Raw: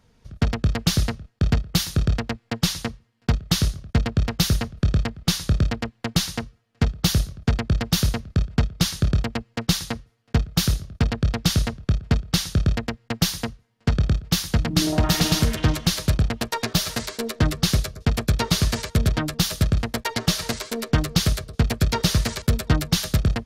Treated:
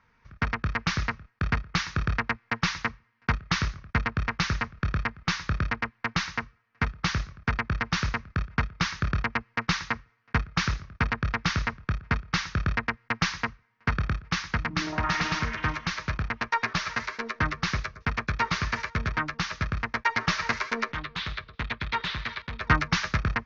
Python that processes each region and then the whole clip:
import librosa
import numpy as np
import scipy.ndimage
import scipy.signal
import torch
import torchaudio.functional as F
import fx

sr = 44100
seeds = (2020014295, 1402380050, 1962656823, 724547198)

y = fx.chain(x, sr, fx.ladder_lowpass(hz=4000.0, resonance_pct=65),
    fx.overload_stage(gain_db=27.5), at=(20.92, 22.61))
y = scipy.signal.sosfilt(scipy.signal.butter(12, 6300.0, 'lowpass', fs=sr, output='sos'), y)
y = fx.band_shelf(y, sr, hz=1500.0, db=14.5, octaves=1.7)
y = fx.rider(y, sr, range_db=10, speed_s=2.0)
y = y * librosa.db_to_amplitude(-9.0)